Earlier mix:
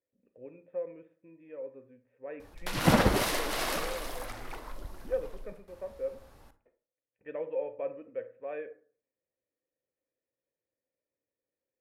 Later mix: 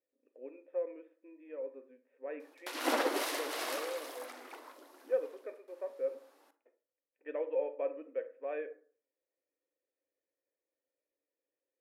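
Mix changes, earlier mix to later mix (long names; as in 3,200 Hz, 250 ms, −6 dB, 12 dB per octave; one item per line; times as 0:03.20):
background −5.5 dB
master: add linear-phase brick-wall high-pass 250 Hz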